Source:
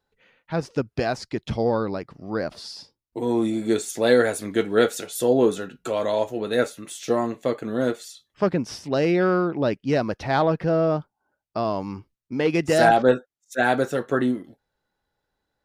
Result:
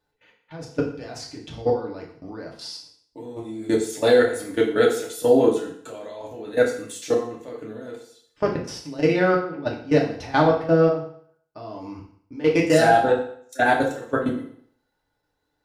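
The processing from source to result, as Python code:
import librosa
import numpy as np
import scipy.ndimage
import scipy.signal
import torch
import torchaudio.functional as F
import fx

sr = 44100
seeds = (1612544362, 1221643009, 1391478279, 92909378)

y = fx.level_steps(x, sr, step_db=20)
y = fx.rev_fdn(y, sr, rt60_s=0.59, lf_ratio=0.9, hf_ratio=0.95, size_ms=20.0, drr_db=-2.5)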